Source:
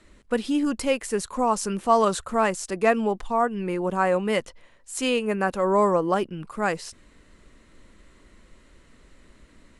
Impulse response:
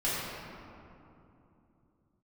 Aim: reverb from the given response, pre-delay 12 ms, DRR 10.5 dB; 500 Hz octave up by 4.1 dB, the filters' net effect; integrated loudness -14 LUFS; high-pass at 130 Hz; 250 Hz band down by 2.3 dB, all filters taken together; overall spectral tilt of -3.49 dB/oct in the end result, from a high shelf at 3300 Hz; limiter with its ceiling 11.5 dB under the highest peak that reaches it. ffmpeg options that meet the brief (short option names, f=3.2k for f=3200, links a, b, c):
-filter_complex "[0:a]highpass=130,equalizer=f=250:t=o:g=-4.5,equalizer=f=500:t=o:g=6,highshelf=f=3.3k:g=6,alimiter=limit=-15.5dB:level=0:latency=1,asplit=2[a][b];[1:a]atrim=start_sample=2205,adelay=12[c];[b][c]afir=irnorm=-1:irlink=0,volume=-20dB[d];[a][d]amix=inputs=2:normalize=0,volume=11.5dB"